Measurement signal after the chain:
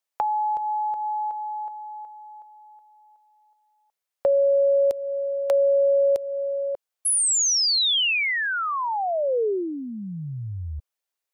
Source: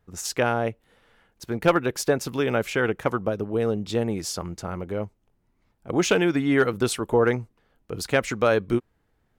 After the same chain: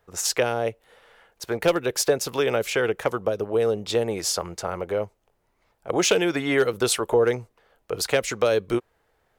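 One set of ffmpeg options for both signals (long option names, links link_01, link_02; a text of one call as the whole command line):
ffmpeg -i in.wav -filter_complex "[0:a]lowshelf=frequency=360:width_type=q:width=1.5:gain=-9.5,acrossover=split=410|3000[link_01][link_02][link_03];[link_02]acompressor=threshold=-31dB:ratio=10[link_04];[link_01][link_04][link_03]amix=inputs=3:normalize=0,volume=6dB" out.wav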